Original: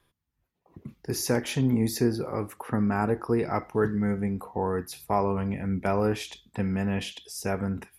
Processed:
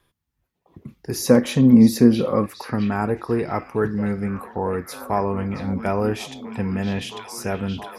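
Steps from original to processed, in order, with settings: 1.21–2.46 small resonant body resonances 220/520/1100/3900 Hz, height 12 dB, ringing for 35 ms; on a send: delay with a stepping band-pass 0.671 s, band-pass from 3500 Hz, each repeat -0.7 oct, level -5.5 dB; on the sum: gain +3 dB

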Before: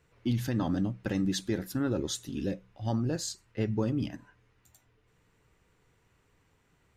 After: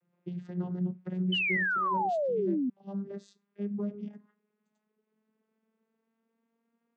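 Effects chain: vocoder on a gliding note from F3, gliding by +5 st; high shelf 5400 Hz -10.5 dB; painted sound fall, 1.32–2.7, 240–3100 Hz -25 dBFS; gain -4 dB

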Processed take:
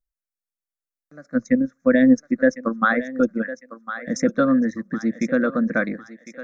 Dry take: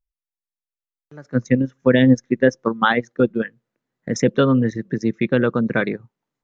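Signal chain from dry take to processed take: fixed phaser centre 600 Hz, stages 8; thinning echo 1.054 s, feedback 42%, high-pass 640 Hz, level -10.5 dB

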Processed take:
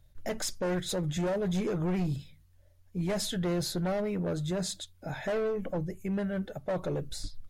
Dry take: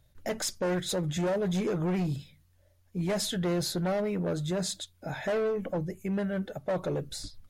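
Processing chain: low shelf 61 Hz +11.5 dB; gain -2 dB

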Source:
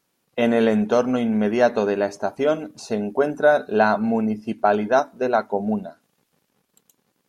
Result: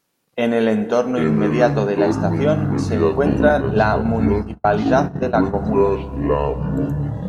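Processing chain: FDN reverb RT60 3.1 s, high-frequency decay 0.4×, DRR 13.5 dB; echoes that change speed 0.602 s, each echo -7 st, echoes 3; resonator 56 Hz, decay 0.43 s, harmonics all, mix 40%; 3.49–5.54 gate -22 dBFS, range -42 dB; gain +4 dB

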